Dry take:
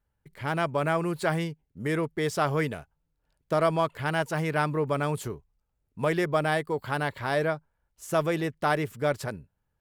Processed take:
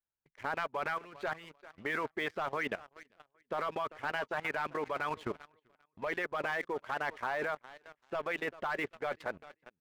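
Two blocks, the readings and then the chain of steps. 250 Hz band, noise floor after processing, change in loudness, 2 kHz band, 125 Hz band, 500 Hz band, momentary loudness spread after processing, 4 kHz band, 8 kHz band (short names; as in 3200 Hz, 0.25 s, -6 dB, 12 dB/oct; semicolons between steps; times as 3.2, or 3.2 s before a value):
-14.0 dB, -85 dBFS, -8.5 dB, -4.0 dB, -21.5 dB, -10.5 dB, 8 LU, -7.5 dB, -16.5 dB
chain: low shelf 320 Hz -11.5 dB; harmonic-percussive split harmonic -15 dB; LPF 3000 Hz 24 dB/oct; on a send: feedback echo 0.393 s, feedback 35%, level -19.5 dB; on the sum: sample leveller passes 2; level quantiser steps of 17 dB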